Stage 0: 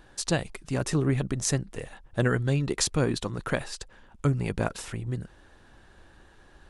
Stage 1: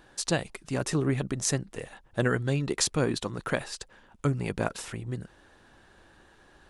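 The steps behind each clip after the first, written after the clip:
low-shelf EQ 92 Hz −9.5 dB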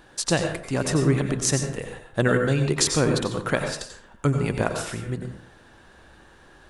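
dense smooth reverb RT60 0.54 s, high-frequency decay 0.6×, pre-delay 80 ms, DRR 5 dB
level +4.5 dB

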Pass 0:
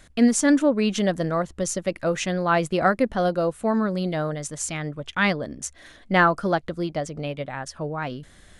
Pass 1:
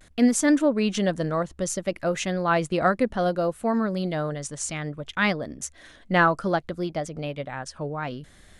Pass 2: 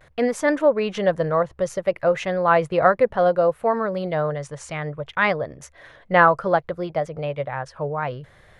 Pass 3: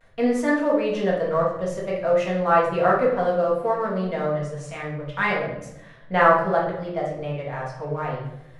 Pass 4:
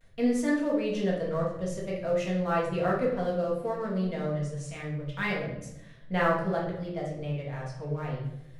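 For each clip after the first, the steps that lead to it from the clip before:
pitch vibrato 0.61 Hz 48 cents; level −1.5 dB
octave-band graphic EQ 125/250/500/1,000/2,000/8,000 Hz +11/−8/+11/+8/+6/−8 dB; level −4 dB
in parallel at −12 dB: dead-zone distortion −30.5 dBFS; on the sum: convolution reverb RT60 0.85 s, pre-delay 4 ms, DRR −4.5 dB; level −9 dB
parametric band 1,000 Hz −12 dB 2.5 octaves

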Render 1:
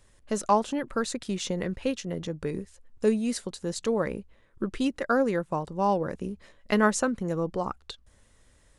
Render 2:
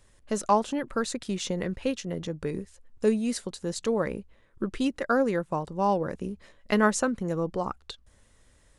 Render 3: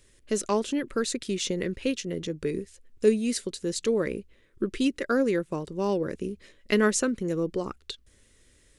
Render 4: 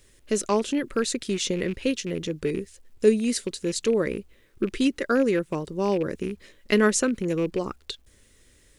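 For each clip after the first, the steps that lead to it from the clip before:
no processing that can be heard
drawn EQ curve 190 Hz 0 dB, 390 Hz +7 dB, 800 Hz −9 dB, 2,200 Hz +5 dB; level −1.5 dB
loose part that buzzes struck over −34 dBFS, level −33 dBFS; bit-depth reduction 12 bits, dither none; level +2.5 dB

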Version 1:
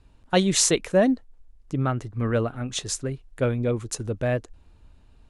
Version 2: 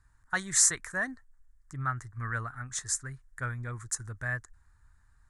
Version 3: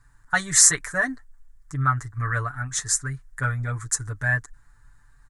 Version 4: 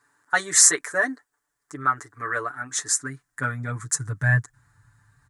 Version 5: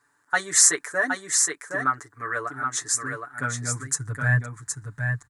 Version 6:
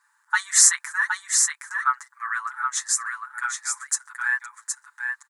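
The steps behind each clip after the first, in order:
drawn EQ curve 130 Hz 0 dB, 190 Hz −10 dB, 540 Hz −15 dB, 1,100 Hz +6 dB, 1,800 Hz +13 dB, 2,700 Hz −13 dB, 7,700 Hz +11 dB, 12,000 Hz +6 dB; level −9 dB
comb filter 6.9 ms, depth 95%; level +5.5 dB
high-pass filter sweep 360 Hz → 99 Hz, 0:02.46–0:04.80
single-tap delay 767 ms −5 dB; level −1.5 dB
linear-phase brick-wall high-pass 820 Hz; level +1.5 dB

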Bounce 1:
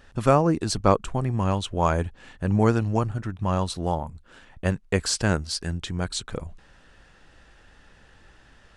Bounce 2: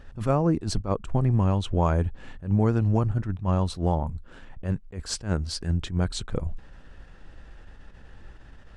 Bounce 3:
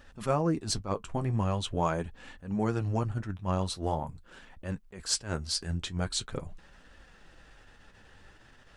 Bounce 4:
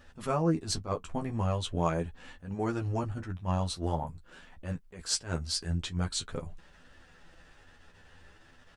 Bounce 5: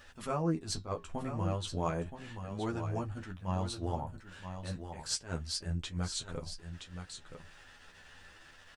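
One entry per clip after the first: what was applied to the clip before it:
spectral tilt −2 dB per octave; downward compressor 4 to 1, threshold −19 dBFS, peak gain reduction 9 dB; level that may rise only so fast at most 190 dB per second; level +1 dB
spectral tilt +2 dB per octave; flanger 0.43 Hz, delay 3.3 ms, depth 7.8 ms, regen −44%; level +1.5 dB
double-tracking delay 12 ms −4 dB; level −2.5 dB
flanger 0.35 Hz, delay 1.8 ms, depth 9.6 ms, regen −79%; single-tap delay 972 ms −9.5 dB; one half of a high-frequency compander encoder only

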